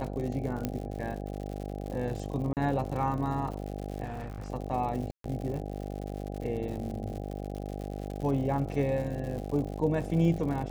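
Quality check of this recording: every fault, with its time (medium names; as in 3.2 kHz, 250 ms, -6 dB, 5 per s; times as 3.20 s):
buzz 50 Hz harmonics 16 -37 dBFS
crackle 120 per s -37 dBFS
0.65 s: pop -16 dBFS
2.53–2.57 s: dropout 38 ms
4.04–4.50 s: clipped -34 dBFS
5.11–5.24 s: dropout 133 ms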